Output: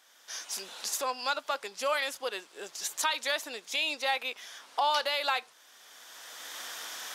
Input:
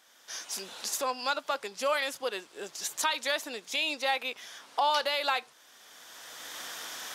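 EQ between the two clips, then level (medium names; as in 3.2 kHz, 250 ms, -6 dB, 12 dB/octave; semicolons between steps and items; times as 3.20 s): bass shelf 240 Hz -11 dB; 0.0 dB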